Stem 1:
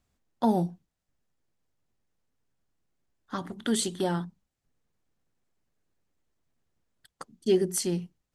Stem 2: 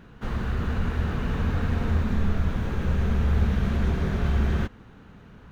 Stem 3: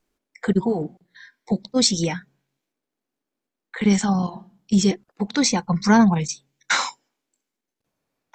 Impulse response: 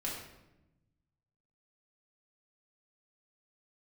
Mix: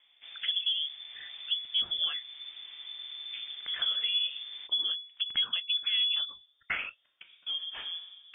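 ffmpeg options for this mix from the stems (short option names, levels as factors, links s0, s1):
-filter_complex "[0:a]acrusher=samples=8:mix=1:aa=0.000001,volume=0.251,asplit=2[s0][s1];[s1]volume=0.708[s2];[1:a]highpass=43,volume=0.168[s3];[2:a]volume=0.794,asplit=2[s4][s5];[s5]apad=whole_len=368127[s6];[s0][s6]sidechaincompress=threshold=0.0141:ratio=8:attack=16:release=371[s7];[s7][s4]amix=inputs=2:normalize=0,equalizer=f=250:w=0.62:g=7,alimiter=limit=0.299:level=0:latency=1:release=217,volume=1[s8];[3:a]atrim=start_sample=2205[s9];[s2][s9]afir=irnorm=-1:irlink=0[s10];[s3][s8][s10]amix=inputs=3:normalize=0,bandreject=f=50:t=h:w=6,bandreject=f=100:t=h:w=6,bandreject=f=150:t=h:w=6,bandreject=f=200:t=h:w=6,lowpass=f=3100:t=q:w=0.5098,lowpass=f=3100:t=q:w=0.6013,lowpass=f=3100:t=q:w=0.9,lowpass=f=3100:t=q:w=2.563,afreqshift=-3600,acompressor=threshold=0.00562:ratio=1.5"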